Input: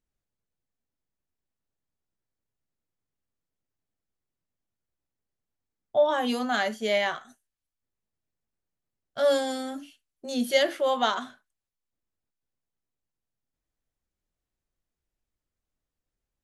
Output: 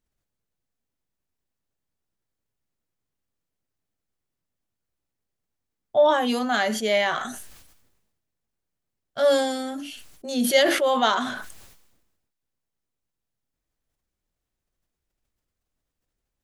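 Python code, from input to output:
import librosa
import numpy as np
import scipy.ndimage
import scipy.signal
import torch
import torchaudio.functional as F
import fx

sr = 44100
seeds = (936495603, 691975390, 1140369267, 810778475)

y = fx.sustainer(x, sr, db_per_s=50.0)
y = y * 10.0 ** (3.0 / 20.0)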